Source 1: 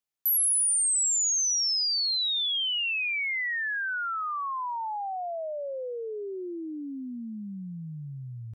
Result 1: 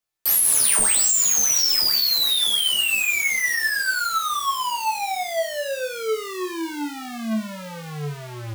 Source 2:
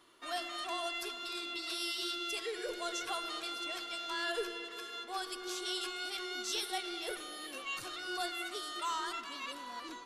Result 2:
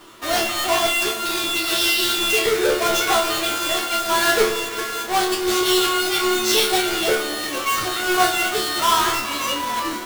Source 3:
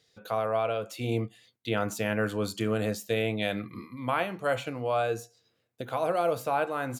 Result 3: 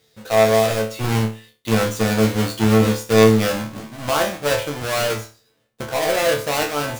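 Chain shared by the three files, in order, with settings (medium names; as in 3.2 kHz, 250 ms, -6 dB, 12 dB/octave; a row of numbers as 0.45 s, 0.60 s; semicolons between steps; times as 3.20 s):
square wave that keeps the level; chord resonator D2 fifth, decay 0.34 s; normalise loudness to -19 LUFS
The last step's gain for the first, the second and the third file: +15.0 dB, +26.0 dB, +15.5 dB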